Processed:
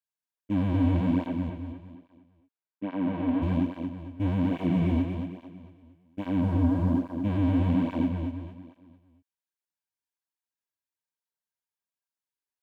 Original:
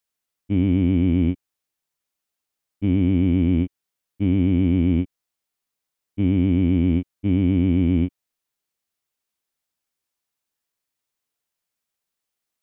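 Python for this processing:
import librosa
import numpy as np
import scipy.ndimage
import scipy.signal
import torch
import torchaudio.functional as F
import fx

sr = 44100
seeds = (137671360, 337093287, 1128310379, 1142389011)

y = fx.comb(x, sr, ms=5.7, depth=0.48, at=(4.52, 4.92))
y = fx.peak_eq(y, sr, hz=2300.0, db=-14.0, octaves=0.93, at=(6.41, 7.11))
y = fx.leveller(y, sr, passes=2)
y = fx.small_body(y, sr, hz=(950.0, 1600.0), ring_ms=45, db=11)
y = fx.bandpass_edges(y, sr, low_hz=200.0, high_hz=fx.line((1.26, 3000.0), (3.41, 2700.0)), at=(1.26, 3.41), fade=0.02)
y = fx.echo_feedback(y, sr, ms=228, feedback_pct=41, wet_db=-5.5)
y = fx.flanger_cancel(y, sr, hz=1.2, depth_ms=6.1)
y = F.gain(torch.from_numpy(y), -8.0).numpy()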